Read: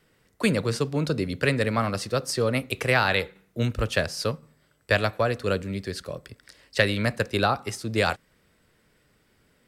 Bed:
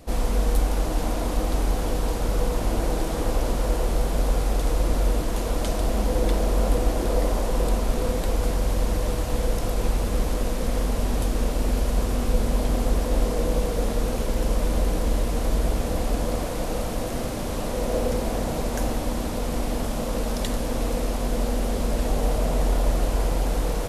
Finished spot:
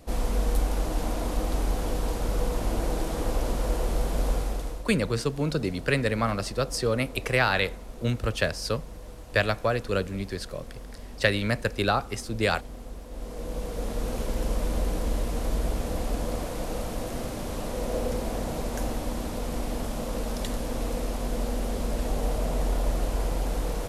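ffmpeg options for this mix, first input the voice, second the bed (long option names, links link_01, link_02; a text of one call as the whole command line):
ffmpeg -i stem1.wav -i stem2.wav -filter_complex "[0:a]adelay=4450,volume=-1.5dB[link_01];[1:a]volume=10dB,afade=type=out:start_time=4.31:duration=0.54:silence=0.188365,afade=type=in:start_time=13.1:duration=1.1:silence=0.211349[link_02];[link_01][link_02]amix=inputs=2:normalize=0" out.wav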